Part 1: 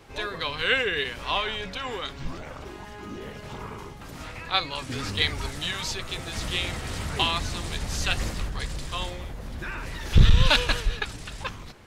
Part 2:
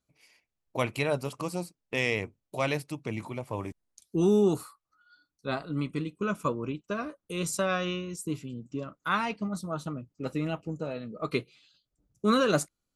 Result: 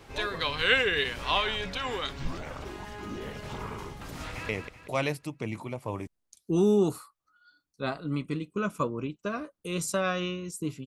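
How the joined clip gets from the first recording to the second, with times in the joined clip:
part 1
0:04.13–0:04.49: delay throw 190 ms, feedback 40%, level −5.5 dB
0:04.49: continue with part 2 from 0:02.14

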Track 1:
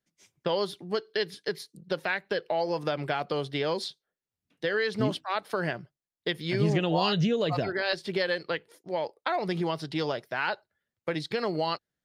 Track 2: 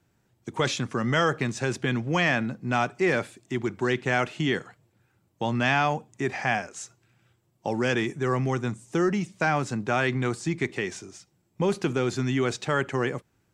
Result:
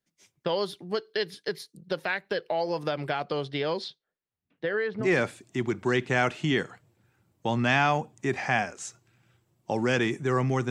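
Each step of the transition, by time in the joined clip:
track 1
0:03.11–0:05.10: low-pass filter 9,300 Hz → 1,500 Hz
0:05.03: continue with track 2 from 0:02.99, crossfade 0.14 s

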